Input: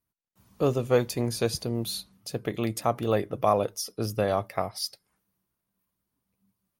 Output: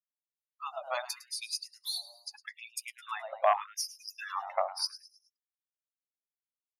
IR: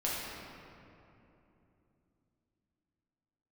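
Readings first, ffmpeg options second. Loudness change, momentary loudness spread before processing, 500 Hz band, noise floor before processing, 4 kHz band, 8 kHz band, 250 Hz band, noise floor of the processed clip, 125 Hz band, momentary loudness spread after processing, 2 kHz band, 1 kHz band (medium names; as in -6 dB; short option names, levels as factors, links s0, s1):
-7.0 dB, 9 LU, -11.0 dB, -83 dBFS, -1.0 dB, -3.5 dB, under -40 dB, under -85 dBFS, under -40 dB, 15 LU, -1.5 dB, -2.5 dB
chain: -filter_complex "[0:a]aeval=exprs='0.224*(abs(mod(val(0)/0.224+3,4)-2)-1)':c=same,afftdn=nr=36:nf=-37,bandreject=f=50:t=h:w=6,bandreject=f=100:t=h:w=6,bandreject=f=150:t=h:w=6,bandreject=f=200:t=h:w=6,bandreject=f=250:t=h:w=6,bandreject=f=300:t=h:w=6,bandreject=f=350:t=h:w=6,bandreject=f=400:t=h:w=6,bandreject=f=450:t=h:w=6,asplit=2[s0][s1];[s1]asplit=4[s2][s3][s4][s5];[s2]adelay=106,afreqshift=120,volume=0.158[s6];[s3]adelay=212,afreqshift=240,volume=0.0653[s7];[s4]adelay=318,afreqshift=360,volume=0.0266[s8];[s5]adelay=424,afreqshift=480,volume=0.011[s9];[s6][s7][s8][s9]amix=inputs=4:normalize=0[s10];[s0][s10]amix=inputs=2:normalize=0,afftfilt=real='re*gte(b*sr/1024,520*pow(2400/520,0.5+0.5*sin(2*PI*0.81*pts/sr)))':imag='im*gte(b*sr/1024,520*pow(2400/520,0.5+0.5*sin(2*PI*0.81*pts/sr)))':win_size=1024:overlap=0.75"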